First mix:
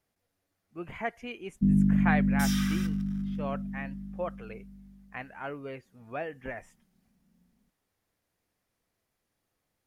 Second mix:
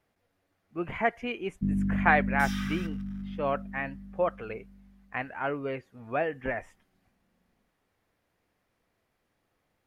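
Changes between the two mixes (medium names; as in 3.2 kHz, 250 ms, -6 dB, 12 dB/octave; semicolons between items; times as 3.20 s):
speech +7.0 dB; first sound: send -10.0 dB; master: add tone controls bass -2 dB, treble -10 dB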